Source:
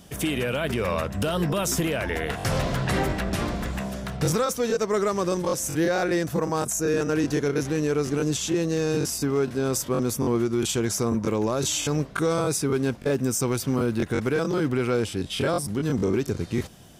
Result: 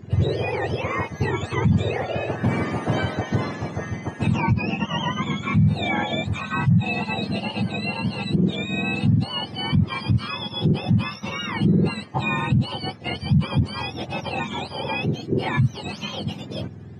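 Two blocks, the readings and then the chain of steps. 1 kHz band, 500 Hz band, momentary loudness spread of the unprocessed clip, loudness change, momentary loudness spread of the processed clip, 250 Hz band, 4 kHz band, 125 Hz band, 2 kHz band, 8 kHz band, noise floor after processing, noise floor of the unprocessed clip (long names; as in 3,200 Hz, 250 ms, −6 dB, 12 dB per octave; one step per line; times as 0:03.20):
+3.0 dB, −5.5 dB, 3 LU, +1.5 dB, 9 LU, +1.5 dB, +3.5 dB, +6.5 dB, +3.5 dB, below −15 dB, −39 dBFS, −40 dBFS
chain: frequency axis turned over on the octave scale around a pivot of 1,100 Hz
high-shelf EQ 5,300 Hz −10.5 dB
brickwall limiter −17 dBFS, peak gain reduction 10.5 dB
head-to-tape spacing loss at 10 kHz 23 dB
level +7 dB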